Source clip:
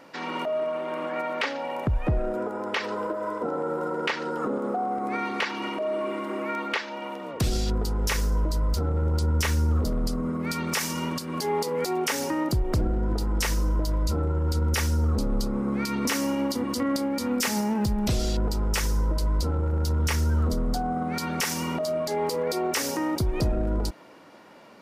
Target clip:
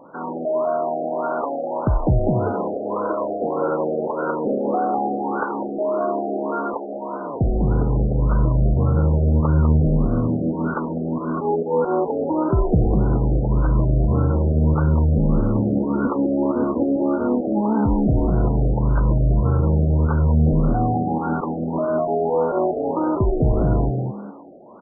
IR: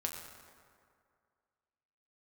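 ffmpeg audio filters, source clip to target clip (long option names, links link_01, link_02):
-filter_complex "[0:a]asplit=2[link_01][link_02];[link_02]asplit=4[link_03][link_04][link_05][link_06];[link_03]adelay=198,afreqshift=76,volume=-4dB[link_07];[link_04]adelay=396,afreqshift=152,volume=-14.2dB[link_08];[link_05]adelay=594,afreqshift=228,volume=-24.3dB[link_09];[link_06]adelay=792,afreqshift=304,volume=-34.5dB[link_10];[link_07][link_08][link_09][link_10]amix=inputs=4:normalize=0[link_11];[link_01][link_11]amix=inputs=2:normalize=0,afftfilt=real='re*lt(b*sr/1024,770*pow(1600/770,0.5+0.5*sin(2*PI*1.7*pts/sr)))':imag='im*lt(b*sr/1024,770*pow(1600/770,0.5+0.5*sin(2*PI*1.7*pts/sr)))':win_size=1024:overlap=0.75,volume=5.5dB"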